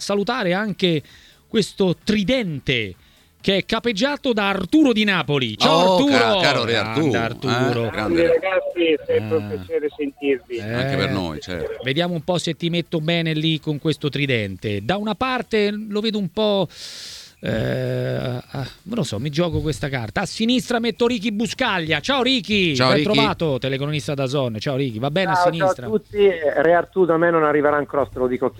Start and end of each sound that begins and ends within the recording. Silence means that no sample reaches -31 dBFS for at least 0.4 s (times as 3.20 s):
1.54–2.92 s